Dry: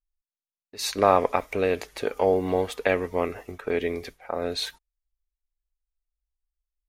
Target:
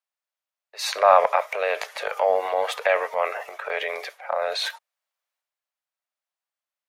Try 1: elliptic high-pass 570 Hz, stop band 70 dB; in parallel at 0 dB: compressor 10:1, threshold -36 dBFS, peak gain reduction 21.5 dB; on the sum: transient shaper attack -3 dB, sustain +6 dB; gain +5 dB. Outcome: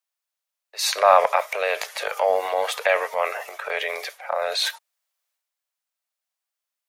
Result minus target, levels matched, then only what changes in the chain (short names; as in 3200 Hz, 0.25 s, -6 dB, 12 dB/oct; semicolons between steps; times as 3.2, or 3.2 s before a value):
8000 Hz band +5.5 dB
add after elliptic high-pass: high shelf 3700 Hz -10.5 dB